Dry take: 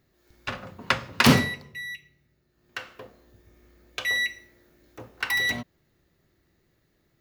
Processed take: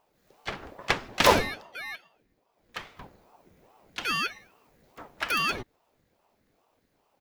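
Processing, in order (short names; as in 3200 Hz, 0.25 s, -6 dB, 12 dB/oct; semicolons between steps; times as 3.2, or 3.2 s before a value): harmoniser -12 st -9 dB, +5 st -15 dB; ring modulator with a swept carrier 470 Hz, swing 75%, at 2.4 Hz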